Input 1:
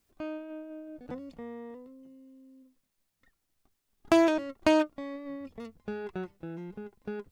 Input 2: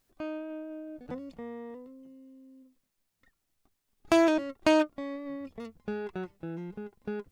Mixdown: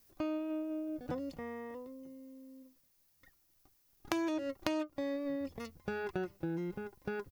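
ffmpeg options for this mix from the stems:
ffmpeg -i stem1.wav -i stem2.wav -filter_complex "[0:a]acompressor=threshold=-29dB:ratio=6,aexciter=amount=1.6:drive=6.1:freq=4700,volume=2dB[link_01];[1:a]volume=-1,adelay=4.5,volume=-4.5dB[link_02];[link_01][link_02]amix=inputs=2:normalize=0,acompressor=threshold=-32dB:ratio=6" out.wav

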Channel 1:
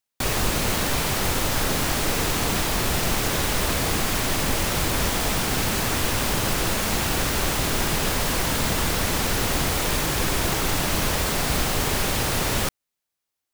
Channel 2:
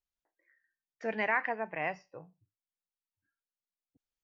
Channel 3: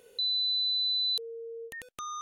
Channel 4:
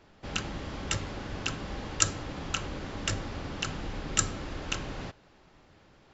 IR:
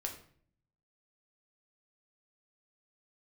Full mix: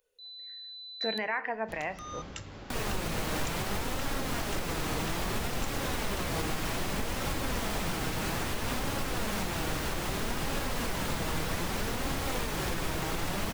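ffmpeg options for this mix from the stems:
-filter_complex "[0:a]highshelf=frequency=3500:gain=-6.5,flanger=delay=3.6:depth=2.8:regen=66:speed=0.62:shape=sinusoidal,adelay=2500,volume=-0.5dB[link_01];[1:a]volume=3dB,asplit=3[link_02][link_03][link_04];[link_03]volume=-9.5dB[link_05];[2:a]highpass=410,volume=-5.5dB,asplit=3[link_06][link_07][link_08];[link_07]volume=-15dB[link_09];[link_08]volume=-24dB[link_10];[3:a]acompressor=threshold=-34dB:ratio=2.5,adelay=1450,volume=-8.5dB,asplit=2[link_11][link_12];[link_12]volume=-9dB[link_13];[link_04]apad=whole_len=97849[link_14];[link_06][link_14]sidechaingate=range=-33dB:threshold=-59dB:ratio=16:detection=peak[link_15];[4:a]atrim=start_sample=2205[link_16];[link_05][link_09][link_13]amix=inputs=3:normalize=0[link_17];[link_17][link_16]afir=irnorm=-1:irlink=0[link_18];[link_10]aecho=0:1:202:1[link_19];[link_01][link_02][link_15][link_11][link_18][link_19]amix=inputs=6:normalize=0,alimiter=limit=-21.5dB:level=0:latency=1:release=260"

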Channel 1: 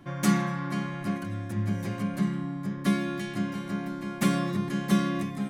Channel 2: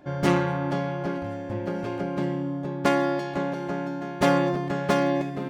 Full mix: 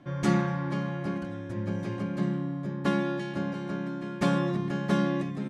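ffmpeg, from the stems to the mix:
ffmpeg -i stem1.wav -i stem2.wav -filter_complex "[0:a]highpass=120,volume=-4dB[link_01];[1:a]volume=-1,adelay=0.7,volume=-10.5dB[link_02];[link_01][link_02]amix=inputs=2:normalize=0,lowpass=6200,lowshelf=frequency=160:gain=6.5,bandreject=frequency=50:width_type=h:width=6,bandreject=frequency=100:width_type=h:width=6,bandreject=frequency=150:width_type=h:width=6,bandreject=frequency=200:width_type=h:width=6" out.wav

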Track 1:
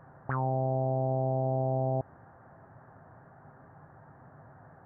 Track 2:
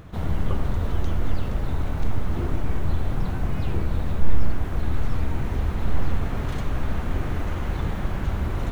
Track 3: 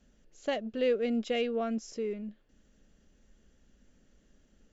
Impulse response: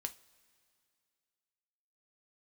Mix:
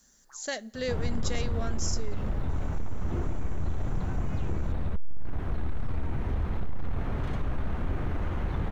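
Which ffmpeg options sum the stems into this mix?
-filter_complex "[0:a]highpass=frequency=920:width=0.5412,highpass=frequency=920:width=1.3066,volume=-20dB[link_01];[1:a]lowpass=frequency=2400:poles=1,asoftclip=type=tanh:threshold=-15dB,adelay=750,volume=-1dB[link_02];[2:a]equalizer=frequency=1700:width_type=o:width=0.77:gain=11.5,aexciter=amount=10.8:drive=5.6:freq=4100,volume=-8dB,asplit=3[link_03][link_04][link_05];[link_04]volume=-3.5dB[link_06];[link_05]apad=whole_len=214106[link_07];[link_01][link_07]sidechaincompress=threshold=-48dB:ratio=8:attack=16:release=718[link_08];[3:a]atrim=start_sample=2205[link_09];[link_06][link_09]afir=irnorm=-1:irlink=0[link_10];[link_08][link_02][link_03][link_10]amix=inputs=4:normalize=0,acompressor=threshold=-28dB:ratio=1.5"

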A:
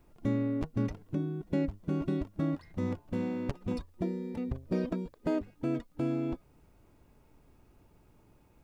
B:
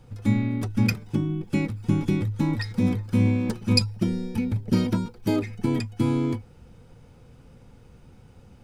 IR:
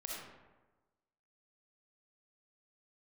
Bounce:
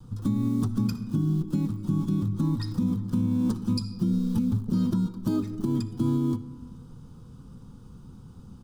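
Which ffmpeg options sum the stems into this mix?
-filter_complex "[0:a]acrossover=split=140|3000[link_01][link_02][link_03];[link_01]acompressor=threshold=-46dB:ratio=6[link_04];[link_04][link_02][link_03]amix=inputs=3:normalize=0,acrusher=bits=7:mix=0:aa=0.000001,volume=2.5dB[link_05];[1:a]adelay=3.4,volume=1.5dB,asplit=2[link_06][link_07];[link_07]volume=-11.5dB[link_08];[2:a]atrim=start_sample=2205[link_09];[link_08][link_09]afir=irnorm=-1:irlink=0[link_10];[link_05][link_06][link_10]amix=inputs=3:normalize=0,firequalizer=gain_entry='entry(100,0);entry(180,6);entry(620,-13);entry(1100,3);entry(2100,-20);entry(3300,-3);entry(7500,-1)':delay=0.05:min_phase=1,alimiter=limit=-17dB:level=0:latency=1:release=325"

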